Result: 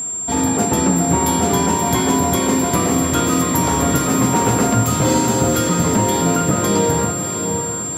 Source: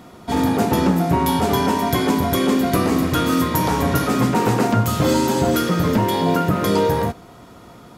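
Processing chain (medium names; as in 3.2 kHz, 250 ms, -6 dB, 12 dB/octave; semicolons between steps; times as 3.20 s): whistle 7.4 kHz -22 dBFS; echo that smears into a reverb 632 ms, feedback 48%, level -6.5 dB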